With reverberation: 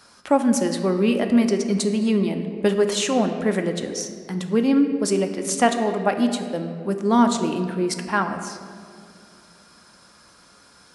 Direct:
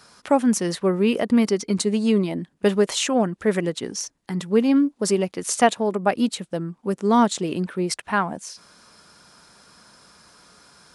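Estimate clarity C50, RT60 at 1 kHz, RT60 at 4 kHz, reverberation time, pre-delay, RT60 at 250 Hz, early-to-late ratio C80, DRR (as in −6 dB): 8.0 dB, 2.0 s, 1.3 s, 2.3 s, 3 ms, 2.7 s, 9.0 dB, 5.5 dB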